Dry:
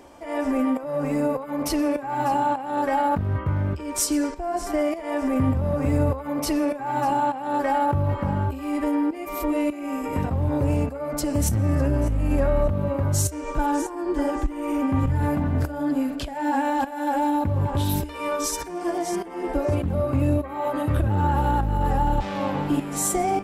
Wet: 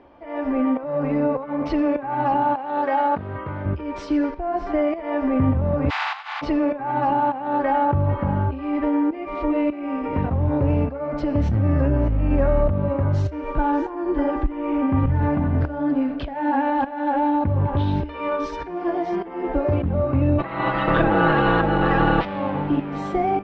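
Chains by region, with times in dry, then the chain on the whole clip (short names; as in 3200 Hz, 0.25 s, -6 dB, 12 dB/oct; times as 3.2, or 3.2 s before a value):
2.55–3.66 HPF 82 Hz + tone controls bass -10 dB, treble +7 dB
5.89–6.41 spectral contrast lowered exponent 0.28 + steep high-pass 740 Hz 72 dB/oct
20.38–22.24 spectral limiter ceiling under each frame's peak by 24 dB + comb 6.1 ms, depth 89%
whole clip: Bessel low-pass 2400 Hz, order 6; AGC gain up to 5 dB; gain -2.5 dB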